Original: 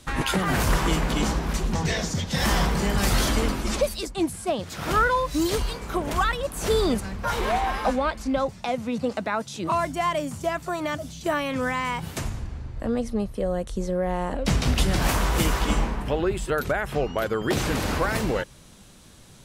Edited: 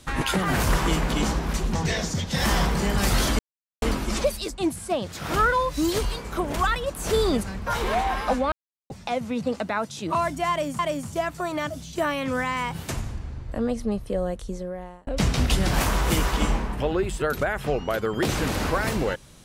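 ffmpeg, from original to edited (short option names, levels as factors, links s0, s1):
-filter_complex "[0:a]asplit=6[s0][s1][s2][s3][s4][s5];[s0]atrim=end=3.39,asetpts=PTS-STARTPTS,afade=t=out:st=3.386:d=0.004:c=hsin,apad=pad_dur=0.43[s6];[s1]atrim=start=3.39:end=8.09,asetpts=PTS-STARTPTS,afade=t=in:d=0.004:c=hsin,afade=t=out:st=4.696:d=0.004:c=hsin[s7];[s2]atrim=start=8.09:end=8.47,asetpts=PTS-STARTPTS,volume=0[s8];[s3]atrim=start=8.47:end=10.362,asetpts=PTS-STARTPTS,afade=t=in:d=0.004:c=hsin[s9];[s4]atrim=start=10.068:end=14.35,asetpts=PTS-STARTPTS,afade=t=out:st=3.402:d=0.88[s10];[s5]atrim=start=14.35,asetpts=PTS-STARTPTS,afade=t=in:d=0.004:c=hsin[s11];[s6][s7][s8][s9]concat=n=4:v=0:a=1[s12];[s10][s11]concat=n=2:v=0:a=1[s13];[s12][s13]acrossfade=d=0.004:c1=hsin:c2=hsin"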